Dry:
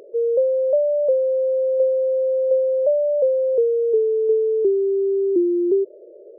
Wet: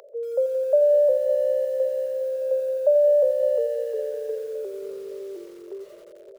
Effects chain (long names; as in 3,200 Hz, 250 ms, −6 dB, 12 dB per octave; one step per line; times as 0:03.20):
Butterworth high-pass 580 Hz 36 dB per octave
repeating echo 561 ms, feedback 46%, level −13 dB
feedback echo at a low word length 87 ms, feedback 80%, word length 8 bits, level −11.5 dB
level +2.5 dB